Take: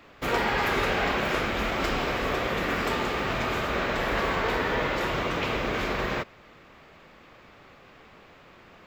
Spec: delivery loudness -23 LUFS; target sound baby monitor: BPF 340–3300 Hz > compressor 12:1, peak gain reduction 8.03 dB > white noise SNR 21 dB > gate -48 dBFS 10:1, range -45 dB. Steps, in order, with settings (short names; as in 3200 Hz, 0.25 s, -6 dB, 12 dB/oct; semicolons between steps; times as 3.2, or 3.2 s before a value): BPF 340–3300 Hz; compressor 12:1, threshold -29 dBFS; white noise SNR 21 dB; gate -48 dBFS 10:1, range -45 dB; gain +9.5 dB